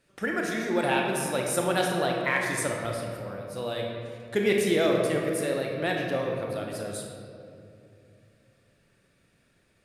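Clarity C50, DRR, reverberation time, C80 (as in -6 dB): 1.0 dB, -0.5 dB, 2.6 s, 3.0 dB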